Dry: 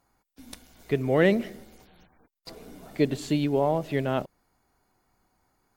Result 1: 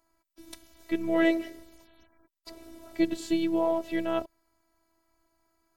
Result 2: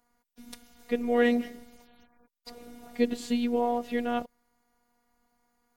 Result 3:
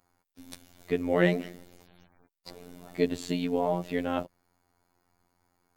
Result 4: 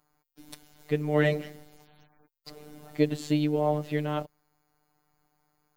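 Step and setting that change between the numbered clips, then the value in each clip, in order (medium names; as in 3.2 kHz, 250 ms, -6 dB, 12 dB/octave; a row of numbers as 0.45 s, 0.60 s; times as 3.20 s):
robot voice, frequency: 330 Hz, 240 Hz, 88 Hz, 150 Hz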